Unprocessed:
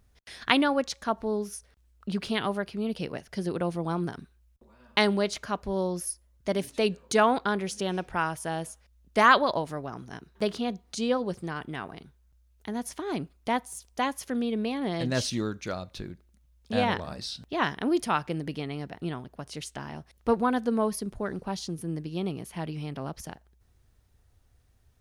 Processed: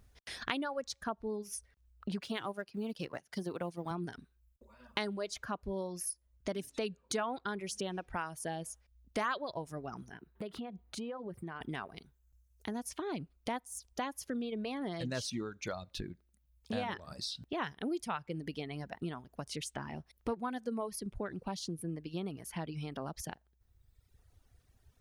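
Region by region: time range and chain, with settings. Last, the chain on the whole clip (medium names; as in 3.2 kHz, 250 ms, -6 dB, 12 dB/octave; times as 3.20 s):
2.21–3.91 s: companding laws mixed up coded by A + high-pass 100 Hz
10.10–11.61 s: peaking EQ 6 kHz -13 dB 1.3 oct + compression 4:1, threshold -38 dBFS + high-pass 45 Hz
whole clip: reverb removal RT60 1.2 s; compression 3:1, threshold -38 dBFS; trim +1 dB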